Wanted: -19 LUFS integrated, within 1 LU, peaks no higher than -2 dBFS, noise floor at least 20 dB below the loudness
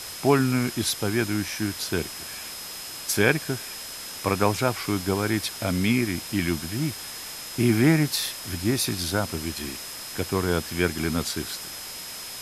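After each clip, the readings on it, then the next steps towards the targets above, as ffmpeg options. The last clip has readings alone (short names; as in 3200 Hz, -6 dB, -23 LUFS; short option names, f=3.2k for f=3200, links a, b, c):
steady tone 5100 Hz; tone level -40 dBFS; noise floor -37 dBFS; noise floor target -46 dBFS; loudness -26.0 LUFS; peak -4.5 dBFS; loudness target -19.0 LUFS
-> -af "bandreject=f=5.1k:w=30"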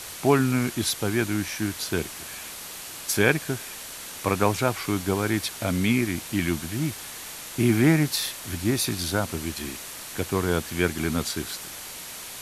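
steady tone none; noise floor -39 dBFS; noise floor target -46 dBFS
-> -af "afftdn=nr=7:nf=-39"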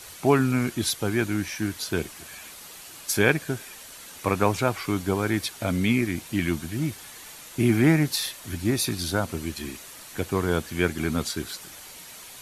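noise floor -44 dBFS; noise floor target -46 dBFS
-> -af "afftdn=nr=6:nf=-44"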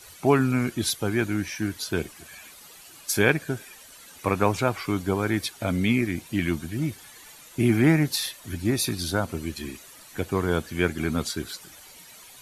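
noise floor -48 dBFS; loudness -25.5 LUFS; peak -4.5 dBFS; loudness target -19.0 LUFS
-> -af "volume=6.5dB,alimiter=limit=-2dB:level=0:latency=1"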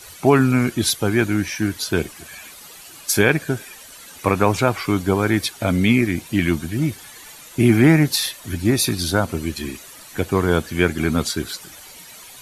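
loudness -19.5 LUFS; peak -2.0 dBFS; noise floor -42 dBFS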